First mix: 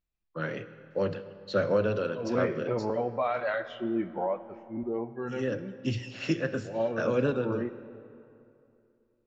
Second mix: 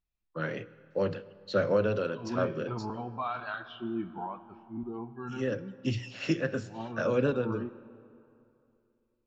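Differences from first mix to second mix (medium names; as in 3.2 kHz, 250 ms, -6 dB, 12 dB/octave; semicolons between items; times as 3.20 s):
first voice: send -6.0 dB; second voice: add static phaser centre 2 kHz, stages 6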